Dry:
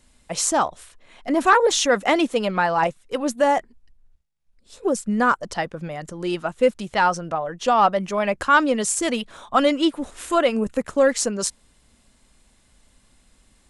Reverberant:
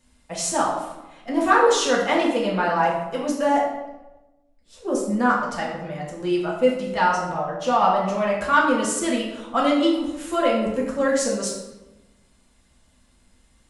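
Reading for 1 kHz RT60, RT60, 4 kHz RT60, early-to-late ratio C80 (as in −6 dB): 1.0 s, 1.1 s, 0.70 s, 5.5 dB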